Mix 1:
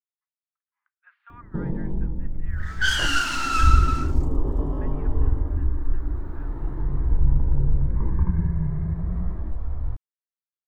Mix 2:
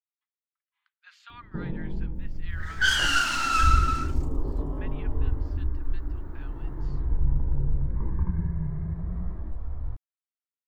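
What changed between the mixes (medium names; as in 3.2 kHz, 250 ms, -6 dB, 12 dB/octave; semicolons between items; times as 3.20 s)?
speech: remove low-pass 1.8 kHz 24 dB/octave; first sound -5.0 dB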